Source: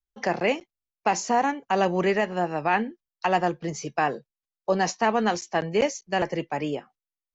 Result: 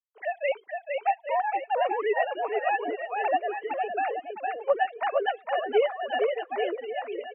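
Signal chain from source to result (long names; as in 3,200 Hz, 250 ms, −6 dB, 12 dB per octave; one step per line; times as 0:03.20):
three sine waves on the formant tracks
bouncing-ball delay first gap 460 ms, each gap 0.8×, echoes 5
reverb reduction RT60 0.84 s
level −3.5 dB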